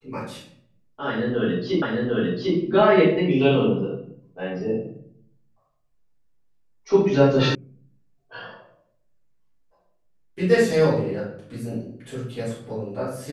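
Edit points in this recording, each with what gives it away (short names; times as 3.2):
1.82 repeat of the last 0.75 s
7.55 sound cut off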